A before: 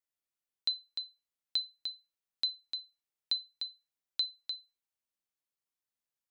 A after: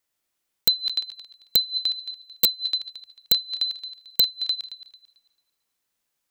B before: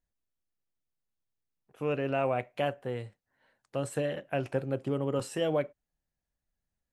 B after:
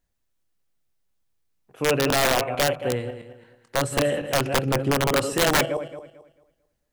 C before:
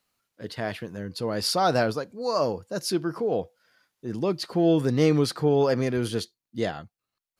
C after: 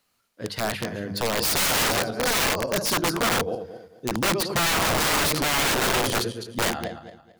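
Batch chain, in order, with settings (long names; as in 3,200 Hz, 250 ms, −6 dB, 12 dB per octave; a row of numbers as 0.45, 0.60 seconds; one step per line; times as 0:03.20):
feedback delay that plays each chunk backwards 111 ms, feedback 52%, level −8 dB
mains-hum notches 50/100/150/200 Hz
wrap-around overflow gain 22.5 dB
loudness normalisation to −23 LKFS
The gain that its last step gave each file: +12.5, +9.0, +5.0 decibels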